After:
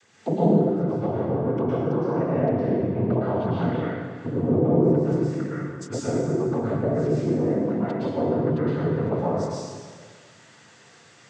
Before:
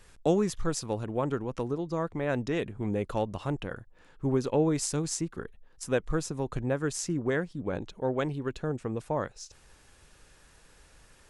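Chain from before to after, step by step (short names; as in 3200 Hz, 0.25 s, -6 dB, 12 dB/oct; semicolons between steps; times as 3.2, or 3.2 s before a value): treble ducked by the level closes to 510 Hz, closed at -24.5 dBFS; noise vocoder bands 16; plate-style reverb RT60 1.7 s, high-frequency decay 0.9×, pre-delay 0.1 s, DRR -8.5 dB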